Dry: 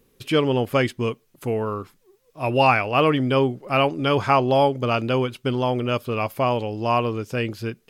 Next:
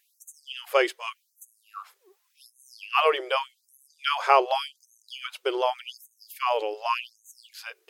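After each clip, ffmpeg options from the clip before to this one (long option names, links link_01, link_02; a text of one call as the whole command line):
ffmpeg -i in.wav -af "afftfilt=real='re*gte(b*sr/1024,320*pow(6200/320,0.5+0.5*sin(2*PI*0.86*pts/sr)))':imag='im*gte(b*sr/1024,320*pow(6200/320,0.5+0.5*sin(2*PI*0.86*pts/sr)))':win_size=1024:overlap=0.75" out.wav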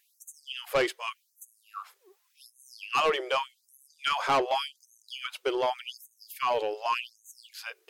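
ffmpeg -i in.wav -af "asoftclip=type=tanh:threshold=-19dB" out.wav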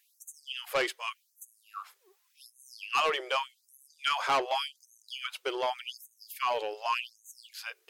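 ffmpeg -i in.wav -af "lowshelf=frequency=470:gain=-10" out.wav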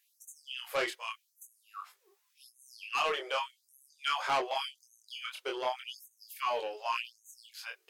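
ffmpeg -i in.wav -af "flanger=delay=20:depth=6.7:speed=0.48" out.wav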